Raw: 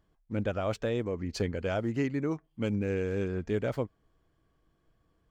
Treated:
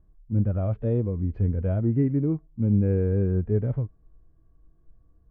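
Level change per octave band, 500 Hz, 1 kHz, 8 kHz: +1.5 dB, can't be measured, below −30 dB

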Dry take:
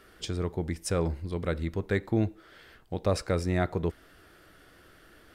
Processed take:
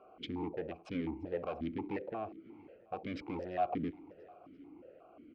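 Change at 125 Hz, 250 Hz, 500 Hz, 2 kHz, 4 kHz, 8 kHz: −17.5 dB, −7.0 dB, −9.0 dB, −11.5 dB, −10.0 dB, below −30 dB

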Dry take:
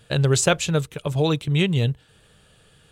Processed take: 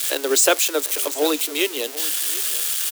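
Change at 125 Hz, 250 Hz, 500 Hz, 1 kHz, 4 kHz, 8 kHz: below −40 dB, −4.0 dB, +2.0 dB, +2.5 dB, +5.5 dB, +9.5 dB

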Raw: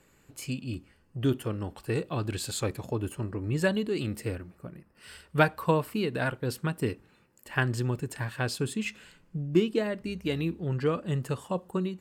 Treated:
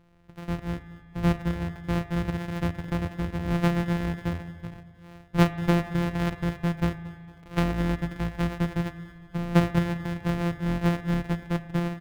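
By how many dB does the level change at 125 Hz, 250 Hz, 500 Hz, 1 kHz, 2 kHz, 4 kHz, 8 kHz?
+4.5, +5.0, −2.5, +1.5, −1.0, −1.5, −7.0 decibels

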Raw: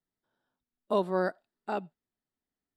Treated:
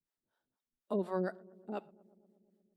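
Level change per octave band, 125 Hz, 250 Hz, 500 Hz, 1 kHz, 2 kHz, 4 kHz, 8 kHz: −3.0 dB, −3.0 dB, −7.0 dB, −10.5 dB, −10.5 dB, below −10 dB, can't be measured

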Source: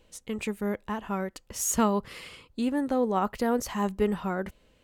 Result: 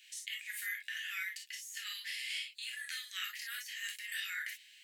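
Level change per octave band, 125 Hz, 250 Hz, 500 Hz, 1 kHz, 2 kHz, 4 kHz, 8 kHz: below −40 dB, below −40 dB, below −40 dB, −26.0 dB, +2.5 dB, +4.5 dB, −11.0 dB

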